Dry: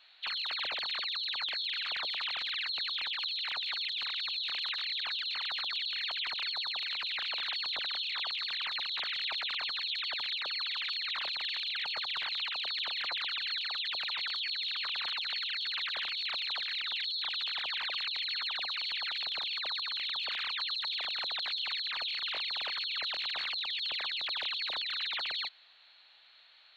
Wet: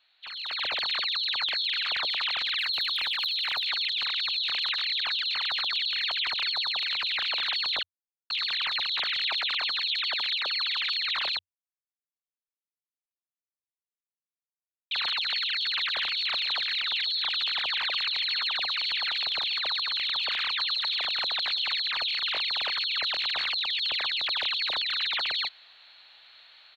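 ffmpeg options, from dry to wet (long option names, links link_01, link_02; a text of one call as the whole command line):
ffmpeg -i in.wav -filter_complex "[0:a]asettb=1/sr,asplit=3[link_01][link_02][link_03];[link_01]atrim=end=2.584[link_04];[link_02]atrim=start=2.58:end=3.64,asetpts=PTS-STARTPTS,afade=type=in:duration=0.004:curve=qsin,afade=type=out:start_time=1.056:duration=0.004:curve=qsin,asoftclip=type=hard:threshold=-28.5dB[link_05];[link_03]atrim=start=3.636[link_06];[link_04][link_05]acrossfade=duration=0.004:curve1=hsin:curve2=qsin[link_07];[link_07][link_06]acrossfade=duration=0.004:curve1=qsin:curve2=hsin,asettb=1/sr,asplit=3[link_08][link_09][link_10];[link_08]atrim=end=9.324[link_11];[link_09]atrim=start=9.32:end=10.79,asetpts=PTS-STARTPTS,afade=type=in:duration=0.004:curve=qsin,afade=type=out:start_time=1.466:duration=0.004:curve=qsin,highpass=170[link_12];[link_10]atrim=start=10.786[link_13];[link_11][link_12]acrossfade=duration=0.004:curve1=hsin:curve2=qsin[link_14];[link_14][link_13]acrossfade=duration=0.004:curve1=qsin:curve2=hsin,asplit=3[link_15][link_16][link_17];[link_15]afade=type=out:start_time=15.95:duration=0.02[link_18];[link_16]aecho=1:1:493:0.106,afade=type=in:start_time=15.95:duration=0.02,afade=type=out:start_time=21.85:duration=0.02[link_19];[link_17]afade=type=in:start_time=21.85:duration=0.02[link_20];[link_18][link_19][link_20]amix=inputs=3:normalize=0,asplit=5[link_21][link_22][link_23][link_24][link_25];[link_21]atrim=end=7.83,asetpts=PTS-STARTPTS,afade=type=out:start_time=7.826:duration=0.004:curve=hsin[link_26];[link_22]atrim=start=7.83:end=8.3,asetpts=PTS-STARTPTS,volume=0[link_27];[link_23]atrim=start=8.3:end=11.39,asetpts=PTS-STARTPTS,afade=type=in:duration=0.004:curve=hsin,afade=type=out:start_time=3.086:duration=0.004:curve=hsin[link_28];[link_24]atrim=start=11.39:end=14.91,asetpts=PTS-STARTPTS,volume=0[link_29];[link_25]atrim=start=14.91,asetpts=PTS-STARTPTS,afade=type=in:duration=0.004:curve=hsin[link_30];[link_26][link_27][link_28][link_29][link_30]concat=n=5:v=0:a=1,equalizer=frequency=91:width=4.1:gain=7.5,dynaudnorm=framelen=110:gausssize=9:maxgain=14dB,volume=-7.5dB" out.wav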